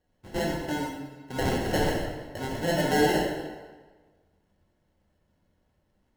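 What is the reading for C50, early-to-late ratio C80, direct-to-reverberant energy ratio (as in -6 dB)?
2.0 dB, 4.0 dB, -3.5 dB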